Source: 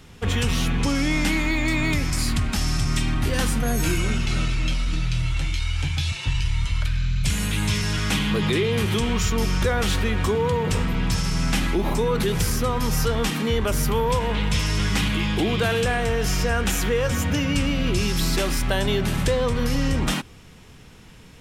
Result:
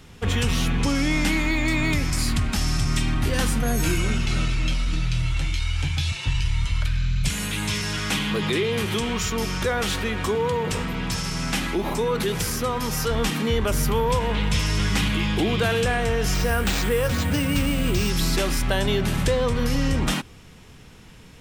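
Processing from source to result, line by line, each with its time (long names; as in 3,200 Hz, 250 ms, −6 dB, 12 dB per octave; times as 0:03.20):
0:07.28–0:13.11: low-shelf EQ 130 Hz −9.5 dB
0:16.34–0:18.10: bad sample-rate conversion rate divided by 4×, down none, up hold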